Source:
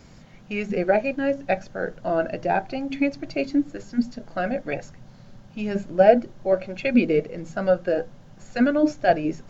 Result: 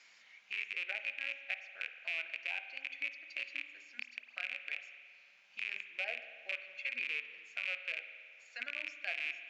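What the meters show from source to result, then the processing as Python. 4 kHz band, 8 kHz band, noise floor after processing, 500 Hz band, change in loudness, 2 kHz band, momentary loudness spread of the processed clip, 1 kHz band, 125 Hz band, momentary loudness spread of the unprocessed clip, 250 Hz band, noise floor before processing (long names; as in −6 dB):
−3.0 dB, can't be measured, −63 dBFS, −34.5 dB, −15.5 dB, −5.0 dB, 12 LU, −29.0 dB, below −40 dB, 11 LU, below −40 dB, −48 dBFS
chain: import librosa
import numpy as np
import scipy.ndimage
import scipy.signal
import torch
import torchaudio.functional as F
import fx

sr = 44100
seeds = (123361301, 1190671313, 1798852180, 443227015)

y = fx.rattle_buzz(x, sr, strikes_db=-31.0, level_db=-13.0)
y = fx.ladder_bandpass(y, sr, hz=2600.0, resonance_pct=55)
y = fx.peak_eq(y, sr, hz=2400.0, db=-9.5, octaves=2.7)
y = fx.rev_spring(y, sr, rt60_s=1.5, pass_ms=(45,), chirp_ms=30, drr_db=9.0)
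y = fx.band_squash(y, sr, depth_pct=40)
y = y * 10.0 ** (3.5 / 20.0)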